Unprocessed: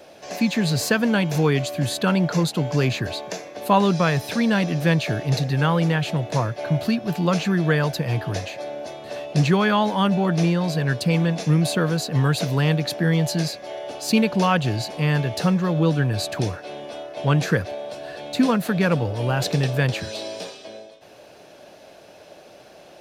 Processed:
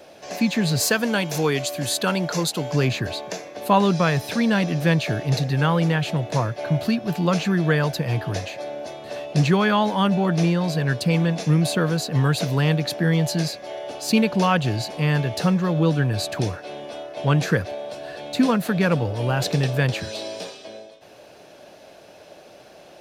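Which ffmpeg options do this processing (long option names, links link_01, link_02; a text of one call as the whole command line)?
ffmpeg -i in.wav -filter_complex "[0:a]asettb=1/sr,asplit=3[link_01][link_02][link_03];[link_01]atrim=end=0.804[link_04];[link_02]atrim=start=0.8:end=2.72,asetpts=PTS-STARTPTS,afade=type=in:duration=0.004:curve=qsin,afade=type=out:start_time=1.916:duration=0.004:curve=qsin,bass=frequency=250:gain=-7,treble=frequency=4000:gain=6[link_05];[link_03]atrim=start=2.716[link_06];[link_04][link_05]acrossfade=duration=0.004:curve1=hsin:curve2=qsin[link_07];[link_07][link_06]acrossfade=duration=0.004:curve1=qsin:curve2=hsin" out.wav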